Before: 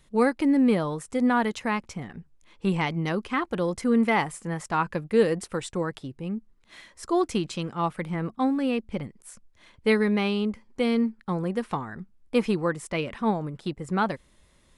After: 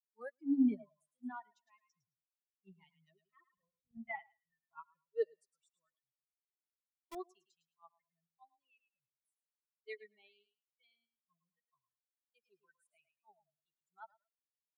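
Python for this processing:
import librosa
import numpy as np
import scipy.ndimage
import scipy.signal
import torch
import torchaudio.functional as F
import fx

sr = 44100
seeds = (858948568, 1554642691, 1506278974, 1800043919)

y = fx.bin_expand(x, sr, power=3.0)
y = fx.transient(y, sr, attack_db=-6, sustain_db=2)
y = fx.filter_sweep_highpass(y, sr, from_hz=240.0, to_hz=480.0, start_s=2.29, end_s=5.52, q=1.2)
y = fx.lpc_vocoder(y, sr, seeds[0], excitation='pitch_kept', order=10, at=(3.57, 4.88))
y = scipy.signal.sosfilt(scipy.signal.butter(2, 76.0, 'highpass', fs=sr, output='sos'), y)
y = fx.echo_feedback(y, sr, ms=108, feedback_pct=21, wet_db=-10.5)
y = fx.quant_companded(y, sr, bits=2, at=(6.24, 7.15))
y = fx.noise_reduce_blind(y, sr, reduce_db=23)
y = fx.upward_expand(y, sr, threshold_db=-37.0, expansion=2.5)
y = F.gain(torch.from_numpy(y), -5.0).numpy()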